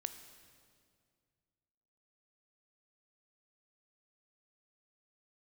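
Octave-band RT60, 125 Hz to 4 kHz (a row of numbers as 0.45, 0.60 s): 2.7, 2.4, 2.3, 2.0, 1.8, 1.8 s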